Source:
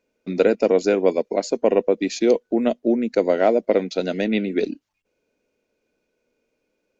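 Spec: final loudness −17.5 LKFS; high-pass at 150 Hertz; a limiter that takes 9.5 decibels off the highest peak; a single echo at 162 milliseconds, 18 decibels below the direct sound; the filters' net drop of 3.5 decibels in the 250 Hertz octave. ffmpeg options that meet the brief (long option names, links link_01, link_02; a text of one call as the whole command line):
ffmpeg -i in.wav -af "highpass=150,equalizer=frequency=250:width_type=o:gain=-4,alimiter=limit=-15dB:level=0:latency=1,aecho=1:1:162:0.126,volume=9dB" out.wav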